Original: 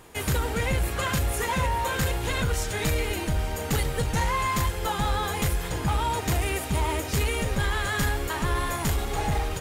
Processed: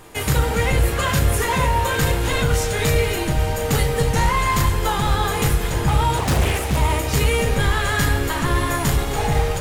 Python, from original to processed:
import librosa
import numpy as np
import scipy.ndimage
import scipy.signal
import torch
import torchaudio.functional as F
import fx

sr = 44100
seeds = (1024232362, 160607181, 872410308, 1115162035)

y = fx.echo_split(x, sr, split_hz=580.0, low_ms=184, high_ms=261, feedback_pct=52, wet_db=-15.0)
y = fx.room_shoebox(y, sr, seeds[0], volume_m3=58.0, walls='mixed', distance_m=0.38)
y = fx.doppler_dist(y, sr, depth_ms=0.97, at=(6.17, 6.77))
y = F.gain(torch.from_numpy(y), 5.0).numpy()